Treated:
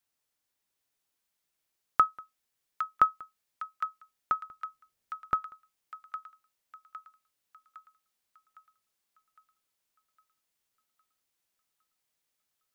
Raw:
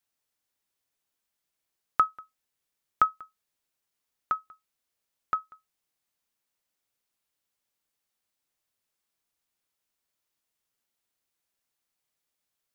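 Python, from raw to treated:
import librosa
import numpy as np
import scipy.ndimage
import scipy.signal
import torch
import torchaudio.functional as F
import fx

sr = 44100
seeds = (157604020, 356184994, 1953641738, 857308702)

p1 = fx.low_shelf(x, sr, hz=280.0, db=9.0, at=(4.47, 5.52))
y = p1 + fx.echo_wet_highpass(p1, sr, ms=809, feedback_pct=50, hz=1600.0, wet_db=-5.5, dry=0)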